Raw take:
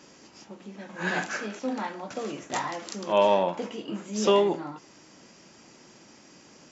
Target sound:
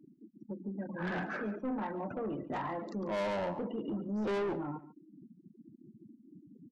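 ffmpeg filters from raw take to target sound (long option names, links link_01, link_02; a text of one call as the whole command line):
ffmpeg -i in.wav -af "lowshelf=frequency=300:gain=7.5,afftfilt=real='re*gte(hypot(re,im),0.0178)':imag='im*gte(hypot(re,im),0.0178)':win_size=1024:overlap=0.75,lowpass=1700,asoftclip=type=tanh:threshold=-26dB,alimiter=level_in=7dB:limit=-24dB:level=0:latency=1:release=73,volume=-7dB,aecho=1:1:142:0.141" out.wav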